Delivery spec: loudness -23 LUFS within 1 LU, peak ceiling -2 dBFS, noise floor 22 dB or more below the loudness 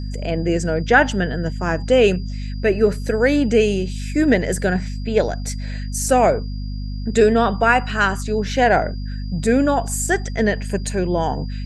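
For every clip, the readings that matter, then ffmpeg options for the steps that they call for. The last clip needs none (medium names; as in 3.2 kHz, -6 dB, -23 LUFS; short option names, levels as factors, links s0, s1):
hum 50 Hz; highest harmonic 250 Hz; hum level -24 dBFS; steady tone 4.8 kHz; tone level -44 dBFS; loudness -19.0 LUFS; peak level -1.5 dBFS; loudness target -23.0 LUFS
-> -af "bandreject=f=50:t=h:w=6,bandreject=f=100:t=h:w=6,bandreject=f=150:t=h:w=6,bandreject=f=200:t=h:w=6,bandreject=f=250:t=h:w=6"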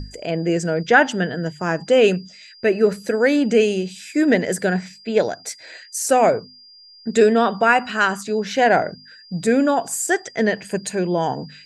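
hum not found; steady tone 4.8 kHz; tone level -44 dBFS
-> -af "bandreject=f=4800:w=30"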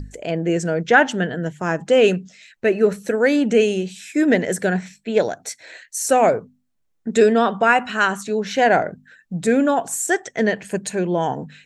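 steady tone not found; loudness -19.5 LUFS; peak level -1.5 dBFS; loudness target -23.0 LUFS
-> -af "volume=0.668"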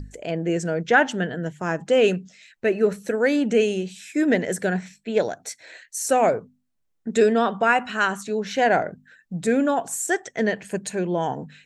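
loudness -23.0 LUFS; peak level -5.0 dBFS; noise floor -71 dBFS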